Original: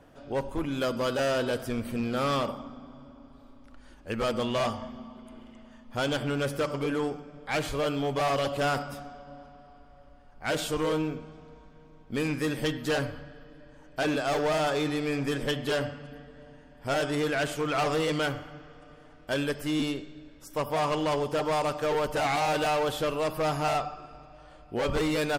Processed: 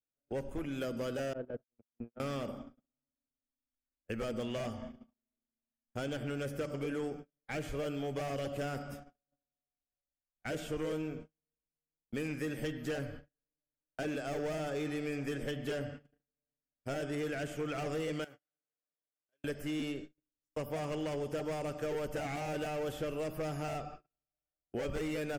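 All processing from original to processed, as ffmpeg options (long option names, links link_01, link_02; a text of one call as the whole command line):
ffmpeg -i in.wav -filter_complex "[0:a]asettb=1/sr,asplit=3[link_01][link_02][link_03];[link_01]atrim=end=1.334[link_04];[link_02]atrim=start=1.33:end=2.2,asetpts=PTS-STARTPTS,afade=type=in:duration=0.004:curve=qsin,afade=type=out:start_time=0.866:duration=0.004:curve=qsin,lowpass=1100,agate=range=-27dB:threshold=-28dB:ratio=16:release=100:detection=peak[link_05];[link_03]atrim=start=2.196[link_06];[link_04][link_05]acrossfade=duration=0.004:curve1=hsin:curve2=qsin[link_07];[link_07][link_06]acrossfade=duration=0.004:curve1=qsin:curve2=hsin,asettb=1/sr,asplit=3[link_08][link_09][link_10];[link_08]atrim=end=18.244[link_11];[link_09]atrim=start=18.24:end=19.44,asetpts=PTS-STARTPTS,afade=type=in:duration=0.004:curve=qsin,afade=type=out:start_time=1.196:duration=0.004:curve=qsin,highpass=frequency=580:poles=1,acompressor=threshold=-46dB:ratio=3:attack=3.2:release=140:knee=1:detection=peak[link_12];[link_10]atrim=start=19.436[link_13];[link_11][link_12]acrossfade=duration=0.004:curve1=hsin:curve2=qsin[link_14];[link_14][link_13]acrossfade=duration=0.004:curve1=qsin:curve2=hsin,agate=range=-44dB:threshold=-39dB:ratio=16:detection=peak,equalizer=frequency=1000:width_type=o:width=0.67:gain=-11,equalizer=frequency=4000:width_type=o:width=0.67:gain=-10,equalizer=frequency=10000:width_type=o:width=0.67:gain=-4,acrossover=split=470|3800[link_15][link_16][link_17];[link_15]acompressor=threshold=-34dB:ratio=4[link_18];[link_16]acompressor=threshold=-37dB:ratio=4[link_19];[link_17]acompressor=threshold=-50dB:ratio=4[link_20];[link_18][link_19][link_20]amix=inputs=3:normalize=0,volume=-3dB" out.wav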